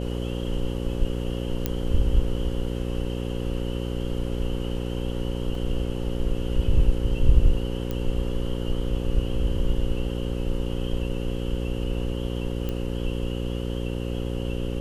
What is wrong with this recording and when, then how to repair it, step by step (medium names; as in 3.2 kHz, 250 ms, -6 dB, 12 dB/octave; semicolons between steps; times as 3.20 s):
buzz 60 Hz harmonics 9 -29 dBFS
1.66 s: pop -10 dBFS
5.55 s: dropout 2.3 ms
7.91 s: pop -17 dBFS
12.69 s: pop -17 dBFS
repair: de-click; de-hum 60 Hz, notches 9; interpolate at 5.55 s, 2.3 ms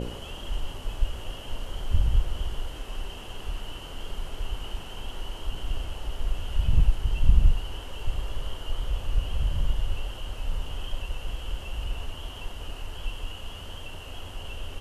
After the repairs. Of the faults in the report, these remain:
nothing left